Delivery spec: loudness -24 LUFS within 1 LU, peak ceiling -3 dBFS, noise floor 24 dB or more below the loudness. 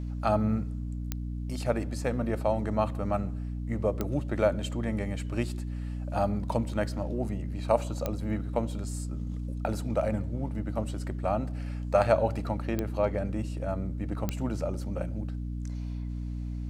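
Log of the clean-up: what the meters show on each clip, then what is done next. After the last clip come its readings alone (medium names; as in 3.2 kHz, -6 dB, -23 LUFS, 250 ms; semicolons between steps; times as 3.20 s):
clicks found 5; hum 60 Hz; highest harmonic 300 Hz; hum level -32 dBFS; loudness -31.0 LUFS; peak level -9.0 dBFS; loudness target -24.0 LUFS
-> de-click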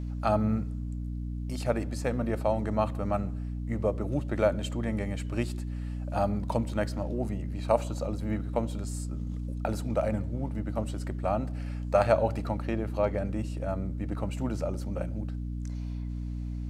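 clicks found 0; hum 60 Hz; highest harmonic 300 Hz; hum level -32 dBFS
-> hum notches 60/120/180/240/300 Hz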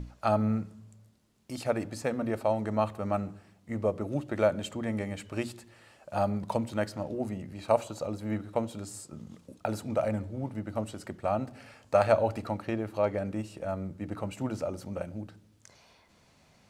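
hum not found; loudness -32.0 LUFS; peak level -10.0 dBFS; loudness target -24.0 LUFS
-> trim +8 dB; peak limiter -3 dBFS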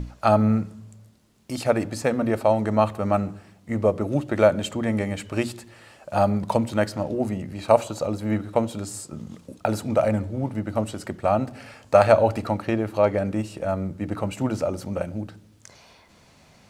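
loudness -24.0 LUFS; peak level -3.0 dBFS; noise floor -55 dBFS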